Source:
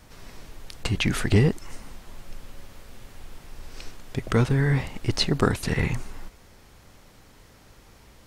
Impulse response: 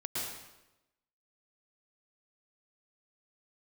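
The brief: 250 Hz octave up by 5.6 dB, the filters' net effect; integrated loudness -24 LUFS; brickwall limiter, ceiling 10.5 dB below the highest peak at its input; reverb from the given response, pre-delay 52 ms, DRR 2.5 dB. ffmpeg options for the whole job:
-filter_complex "[0:a]equalizer=f=250:t=o:g=7.5,alimiter=limit=0.2:level=0:latency=1,asplit=2[s0][s1];[1:a]atrim=start_sample=2205,adelay=52[s2];[s1][s2]afir=irnorm=-1:irlink=0,volume=0.501[s3];[s0][s3]amix=inputs=2:normalize=0"

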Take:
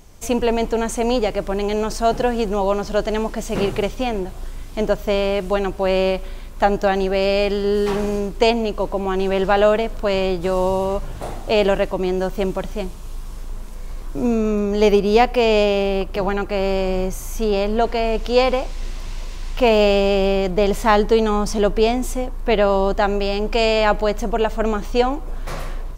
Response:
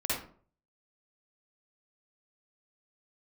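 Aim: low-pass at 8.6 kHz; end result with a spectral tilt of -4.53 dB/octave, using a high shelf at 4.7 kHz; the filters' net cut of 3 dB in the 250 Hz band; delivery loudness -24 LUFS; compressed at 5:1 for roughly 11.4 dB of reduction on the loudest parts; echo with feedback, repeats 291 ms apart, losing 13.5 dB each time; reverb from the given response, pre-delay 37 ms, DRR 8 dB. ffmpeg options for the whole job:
-filter_complex "[0:a]lowpass=8600,equalizer=f=250:t=o:g=-4,highshelf=f=4700:g=4,acompressor=threshold=0.0631:ratio=5,aecho=1:1:291|582:0.211|0.0444,asplit=2[s0][s1];[1:a]atrim=start_sample=2205,adelay=37[s2];[s1][s2]afir=irnorm=-1:irlink=0,volume=0.178[s3];[s0][s3]amix=inputs=2:normalize=0,volume=1.58"

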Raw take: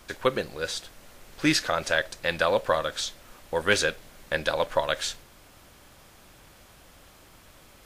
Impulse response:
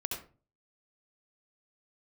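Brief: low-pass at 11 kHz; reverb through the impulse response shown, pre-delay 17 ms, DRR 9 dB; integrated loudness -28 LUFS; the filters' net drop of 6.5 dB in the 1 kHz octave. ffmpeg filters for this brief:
-filter_complex "[0:a]lowpass=11000,equalizer=f=1000:t=o:g=-8.5,asplit=2[s0][s1];[1:a]atrim=start_sample=2205,adelay=17[s2];[s1][s2]afir=irnorm=-1:irlink=0,volume=0.266[s3];[s0][s3]amix=inputs=2:normalize=0,volume=1.06"

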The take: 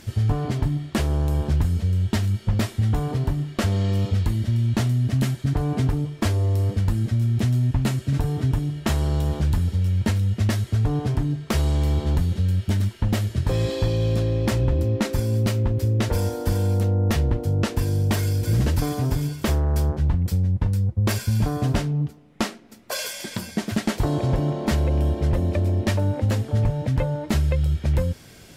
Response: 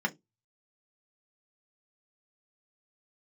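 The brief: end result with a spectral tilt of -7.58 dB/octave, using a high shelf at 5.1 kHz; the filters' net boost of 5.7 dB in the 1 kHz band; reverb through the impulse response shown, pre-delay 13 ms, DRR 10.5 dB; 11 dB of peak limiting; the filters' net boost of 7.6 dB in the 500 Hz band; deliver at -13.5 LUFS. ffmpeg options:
-filter_complex "[0:a]equalizer=f=500:t=o:g=8,equalizer=f=1000:t=o:g=4.5,highshelf=f=5100:g=-4.5,alimiter=limit=0.126:level=0:latency=1,asplit=2[s0][s1];[1:a]atrim=start_sample=2205,adelay=13[s2];[s1][s2]afir=irnorm=-1:irlink=0,volume=0.119[s3];[s0][s3]amix=inputs=2:normalize=0,volume=4.22"

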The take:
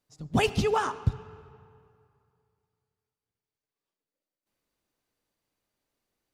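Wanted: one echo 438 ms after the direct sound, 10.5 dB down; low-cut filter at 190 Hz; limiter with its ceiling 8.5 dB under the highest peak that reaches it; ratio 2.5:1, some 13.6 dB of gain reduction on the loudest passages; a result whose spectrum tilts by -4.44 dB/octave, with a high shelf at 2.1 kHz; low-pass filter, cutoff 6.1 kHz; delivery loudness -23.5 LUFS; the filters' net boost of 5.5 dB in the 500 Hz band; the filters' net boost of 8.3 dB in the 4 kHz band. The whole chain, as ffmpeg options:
-af "highpass=190,lowpass=6100,equalizer=f=500:t=o:g=6.5,highshelf=f=2100:g=6,equalizer=f=4000:t=o:g=6.5,acompressor=threshold=0.0141:ratio=2.5,alimiter=level_in=1.88:limit=0.0631:level=0:latency=1,volume=0.531,aecho=1:1:438:0.299,volume=7.94"

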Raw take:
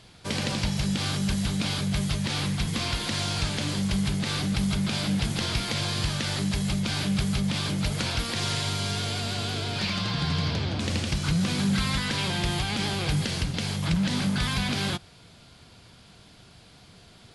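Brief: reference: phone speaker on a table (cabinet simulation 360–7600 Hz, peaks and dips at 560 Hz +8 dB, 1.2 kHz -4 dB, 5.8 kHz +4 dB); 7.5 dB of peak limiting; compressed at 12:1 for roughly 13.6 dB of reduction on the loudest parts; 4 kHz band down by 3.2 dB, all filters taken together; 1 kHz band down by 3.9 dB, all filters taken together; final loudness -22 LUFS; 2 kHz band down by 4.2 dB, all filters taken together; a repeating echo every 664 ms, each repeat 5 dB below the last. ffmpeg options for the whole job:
-af "equalizer=f=1000:t=o:g=-4,equalizer=f=2000:t=o:g=-3,equalizer=f=4000:t=o:g=-3.5,acompressor=threshold=0.0158:ratio=12,alimiter=level_in=2.66:limit=0.0631:level=0:latency=1,volume=0.376,highpass=f=360:w=0.5412,highpass=f=360:w=1.3066,equalizer=f=560:t=q:w=4:g=8,equalizer=f=1200:t=q:w=4:g=-4,equalizer=f=5800:t=q:w=4:g=4,lowpass=f=7600:w=0.5412,lowpass=f=7600:w=1.3066,aecho=1:1:664|1328|1992|2656|3320|3984|4648:0.562|0.315|0.176|0.0988|0.0553|0.031|0.0173,volume=12.6"

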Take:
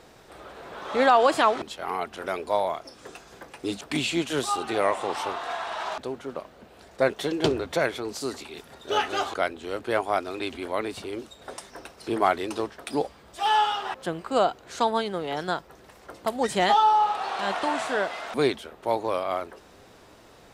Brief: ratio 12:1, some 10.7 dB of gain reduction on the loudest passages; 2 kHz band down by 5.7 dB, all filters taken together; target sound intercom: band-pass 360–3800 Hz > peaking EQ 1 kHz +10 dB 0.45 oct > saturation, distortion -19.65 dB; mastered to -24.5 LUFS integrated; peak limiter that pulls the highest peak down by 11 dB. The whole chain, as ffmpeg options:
-af "equalizer=f=2000:t=o:g=-9,acompressor=threshold=0.0447:ratio=12,alimiter=level_in=1.12:limit=0.0631:level=0:latency=1,volume=0.891,highpass=360,lowpass=3800,equalizer=f=1000:t=o:w=0.45:g=10,asoftclip=threshold=0.0708,volume=3.55"

